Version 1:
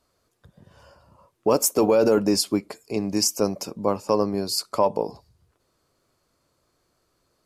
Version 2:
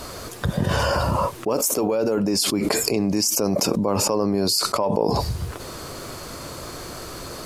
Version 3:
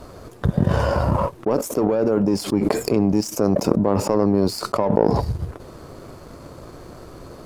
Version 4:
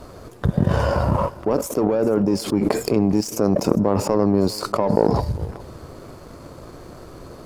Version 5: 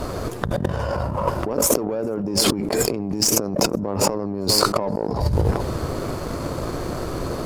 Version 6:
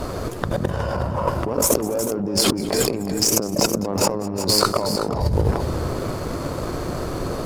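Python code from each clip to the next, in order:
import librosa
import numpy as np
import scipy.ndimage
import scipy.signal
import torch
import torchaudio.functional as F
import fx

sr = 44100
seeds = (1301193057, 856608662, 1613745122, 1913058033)

y1 = fx.env_flatten(x, sr, amount_pct=100)
y1 = y1 * 10.0 ** (-5.0 / 20.0)
y2 = fx.power_curve(y1, sr, exponent=1.4)
y2 = fx.tilt_shelf(y2, sr, db=7.5, hz=1400.0)
y2 = y2 * 10.0 ** (2.0 / 20.0)
y3 = y2 + 10.0 ** (-19.5 / 20.0) * np.pad(y2, (int(405 * sr / 1000.0), 0))[:len(y2)]
y4 = fx.over_compress(y3, sr, threshold_db=-28.0, ratio=-1.0)
y4 = y4 * 10.0 ** (5.5 / 20.0)
y5 = fx.echo_multitap(y4, sr, ms=(202, 367), db=(-19.0, -9.5))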